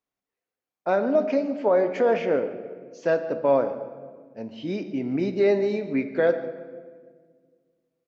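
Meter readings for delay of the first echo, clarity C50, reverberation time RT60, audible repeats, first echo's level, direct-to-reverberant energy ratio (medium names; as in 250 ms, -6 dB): 143 ms, 10.5 dB, 1.7 s, 1, -17.5 dB, 8.0 dB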